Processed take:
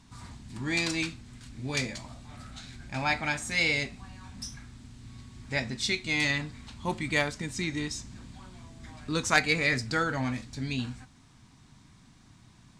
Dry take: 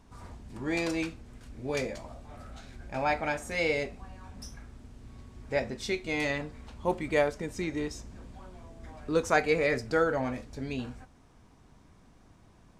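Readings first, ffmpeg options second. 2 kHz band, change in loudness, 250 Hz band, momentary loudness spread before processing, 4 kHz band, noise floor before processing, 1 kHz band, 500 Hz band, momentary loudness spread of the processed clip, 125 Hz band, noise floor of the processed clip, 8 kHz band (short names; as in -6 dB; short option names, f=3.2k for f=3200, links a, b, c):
+4.5 dB, +1.0 dB, +0.5 dB, 22 LU, +9.0 dB, -58 dBFS, -1.0 dB, -7.0 dB, 22 LU, +4.5 dB, -57 dBFS, +8.0 dB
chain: -af "equalizer=f=125:t=o:w=1:g=10,equalizer=f=250:t=o:w=1:g=6,equalizer=f=500:t=o:w=1:g=-7,equalizer=f=1k:t=o:w=1:g=4,equalizer=f=2k:t=o:w=1:g=6,equalizer=f=4k:t=o:w=1:g=11,equalizer=f=8k:t=o:w=1:g=11,aeval=exprs='0.501*(cos(1*acos(clip(val(0)/0.501,-1,1)))-cos(1*PI/2))+0.1*(cos(3*acos(clip(val(0)/0.501,-1,1)))-cos(3*PI/2))+0.02*(cos(5*acos(clip(val(0)/0.501,-1,1)))-cos(5*PI/2))':c=same"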